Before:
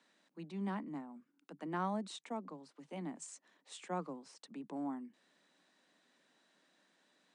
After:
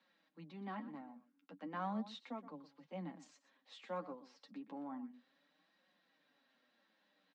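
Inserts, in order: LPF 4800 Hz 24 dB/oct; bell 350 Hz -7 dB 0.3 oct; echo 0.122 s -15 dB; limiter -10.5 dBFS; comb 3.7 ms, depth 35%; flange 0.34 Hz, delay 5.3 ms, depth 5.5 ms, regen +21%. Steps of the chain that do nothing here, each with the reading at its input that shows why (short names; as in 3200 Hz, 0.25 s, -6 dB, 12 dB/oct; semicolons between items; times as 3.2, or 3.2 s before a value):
limiter -10.5 dBFS: input peak -24.5 dBFS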